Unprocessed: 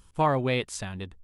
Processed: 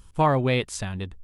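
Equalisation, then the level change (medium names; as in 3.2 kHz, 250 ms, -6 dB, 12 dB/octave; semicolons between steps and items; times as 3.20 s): bass shelf 130 Hz +5.5 dB; +2.5 dB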